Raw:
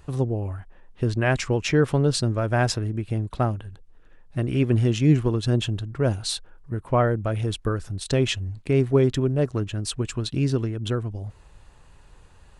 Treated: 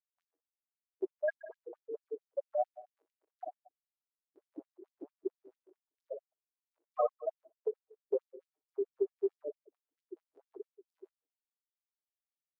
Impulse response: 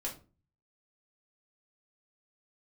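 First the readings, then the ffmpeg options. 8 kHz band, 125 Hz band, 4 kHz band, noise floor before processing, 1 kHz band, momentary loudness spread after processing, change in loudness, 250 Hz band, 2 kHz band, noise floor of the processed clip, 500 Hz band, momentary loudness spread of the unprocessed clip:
under -40 dB, under -40 dB, under -40 dB, -51 dBFS, -13.0 dB, 20 LU, -15.0 dB, -24.5 dB, under -20 dB, under -85 dBFS, -11.5 dB, 10 LU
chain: -af "dynaudnorm=f=190:g=3:m=8dB,afftfilt=real='re*gte(hypot(re,im),1.12)':imag='im*gte(hypot(re,im),1.12)':win_size=1024:overlap=0.75,highshelf=f=7.1k:g=11,aecho=1:1:60|120|180|240:0.316|0.126|0.0506|0.0202,acompressor=threshold=-22dB:ratio=6,afftfilt=real='re*gte(b*sr/1024,300*pow(4800/300,0.5+0.5*sin(2*PI*4.5*pts/sr)))':imag='im*gte(b*sr/1024,300*pow(4800/300,0.5+0.5*sin(2*PI*4.5*pts/sr)))':win_size=1024:overlap=0.75"

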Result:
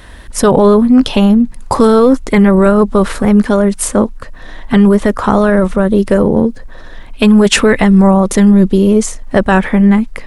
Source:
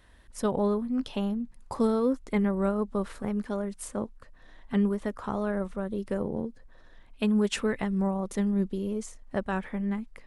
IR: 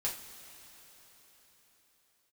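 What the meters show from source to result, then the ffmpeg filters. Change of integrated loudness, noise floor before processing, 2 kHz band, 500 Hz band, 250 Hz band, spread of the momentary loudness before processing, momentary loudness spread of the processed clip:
+19.5 dB, -54 dBFS, +21.0 dB, +19.5 dB, +19.5 dB, 9 LU, 6 LU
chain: -af "apsyclip=25dB,volume=-2dB"

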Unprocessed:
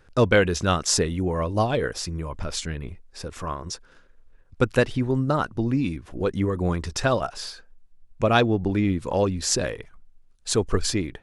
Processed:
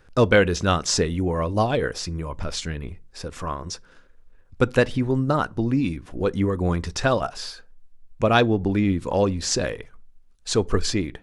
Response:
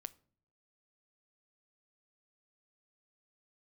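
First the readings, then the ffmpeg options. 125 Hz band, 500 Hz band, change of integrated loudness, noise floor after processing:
+1.0 dB, +1.5 dB, +1.0 dB, -53 dBFS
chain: -filter_complex "[0:a]acrossover=split=7700[a][b];[b]acompressor=threshold=-48dB:ratio=4:attack=1:release=60[c];[a][c]amix=inputs=2:normalize=0,asplit=2[d][e];[1:a]atrim=start_sample=2205,asetrate=74970,aresample=44100[f];[e][f]afir=irnorm=-1:irlink=0,volume=10dB[g];[d][g]amix=inputs=2:normalize=0,volume=-5dB"

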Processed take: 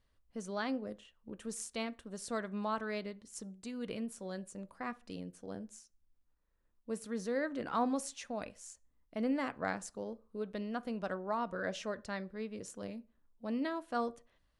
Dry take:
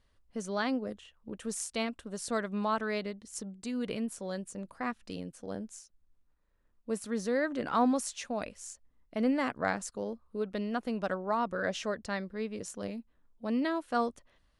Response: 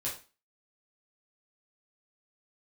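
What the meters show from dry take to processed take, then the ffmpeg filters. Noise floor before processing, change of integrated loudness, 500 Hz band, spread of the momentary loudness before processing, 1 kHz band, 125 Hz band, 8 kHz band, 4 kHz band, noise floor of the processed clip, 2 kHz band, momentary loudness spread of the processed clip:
-70 dBFS, -5.0 dB, -5.0 dB, 12 LU, -5.0 dB, -4.5 dB, -5.5 dB, -5.5 dB, -75 dBFS, -5.5 dB, 12 LU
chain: -filter_complex "[0:a]asplit=2[a][b];[1:a]atrim=start_sample=2205,highshelf=f=2.4k:g=-12[c];[b][c]afir=irnorm=-1:irlink=0,volume=-14dB[d];[a][d]amix=inputs=2:normalize=0,volume=-6dB"

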